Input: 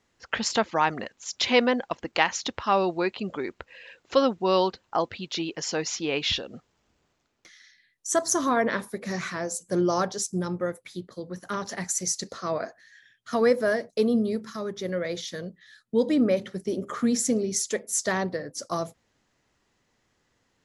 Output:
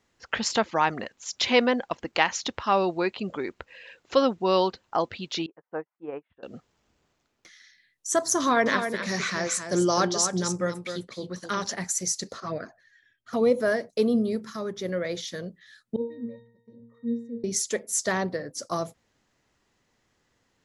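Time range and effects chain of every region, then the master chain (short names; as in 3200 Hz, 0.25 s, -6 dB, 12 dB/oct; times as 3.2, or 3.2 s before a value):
5.46–6.43 LPF 1400 Hz 24 dB/oct + low shelf 260 Hz -11.5 dB + upward expander 2.5:1, over -53 dBFS
8.4–11.72 LPF 6200 Hz + high shelf 2300 Hz +11 dB + echo 0.258 s -8 dB
12.4–13.6 low shelf 140 Hz +5 dB + envelope flanger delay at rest 3.4 ms, full sweep at -21.5 dBFS + mismatched tape noise reduction decoder only
15.96–17.44 gate -35 dBFS, range -6 dB + octave resonator A#, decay 0.51 s
whole clip: dry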